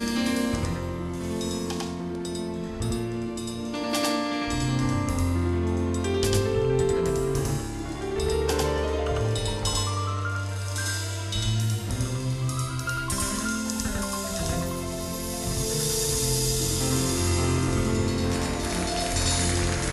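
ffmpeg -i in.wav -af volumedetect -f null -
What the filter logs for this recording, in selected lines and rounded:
mean_volume: -26.3 dB
max_volume: -8.9 dB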